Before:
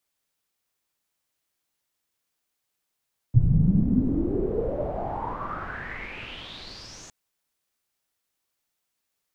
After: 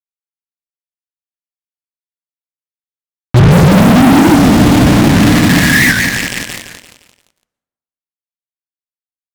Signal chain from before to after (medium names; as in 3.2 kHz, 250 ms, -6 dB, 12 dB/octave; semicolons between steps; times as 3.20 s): high-pass 150 Hz 12 dB/octave; FFT band-reject 330–1600 Hz; low-pass 4.1 kHz 24 dB/octave; bass shelf 420 Hz +6 dB; hum notches 50/100/150/200 Hz; 3.52–5.92 s: waveshaping leveller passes 5; fuzz box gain 40 dB, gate -33 dBFS; feedback delay 172 ms, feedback 43%, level -9 dB; plate-style reverb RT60 1.1 s, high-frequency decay 0.55×, pre-delay 100 ms, DRR 19.5 dB; loudness maximiser +17 dB; warped record 78 rpm, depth 160 cents; trim -1 dB